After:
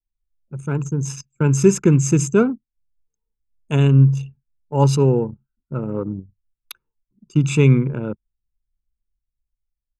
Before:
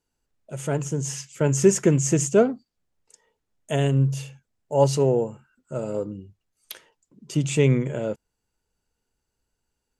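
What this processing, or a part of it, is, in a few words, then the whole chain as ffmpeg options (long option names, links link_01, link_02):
voice memo with heavy noise removal: -filter_complex "[0:a]asettb=1/sr,asplit=3[link_01][link_02][link_03];[link_01]atrim=end=5.984[link_04];[link_02]atrim=start=5.98:end=7.65,asetpts=PTS-STARTPTS,afade=type=in:duration=0.004:curve=qsin,afade=type=out:start_time=1.666:duration=0.004:curve=qsin,equalizer=frequency=1200:width=1.5:gain=4.5[link_05];[link_03]atrim=start=7.646[link_06];[link_04][link_05]acrossfade=duration=0.004:curve1=hsin:curve2=qsin[link_07];[link_07][link_06]acrossfade=duration=0.004:curve1=qsin:curve2=hsin,aecho=1:1:0.8:0.78,anlmdn=39.8,dynaudnorm=framelen=110:gausssize=17:maxgain=5dB,highshelf=frequency=4400:gain=-6"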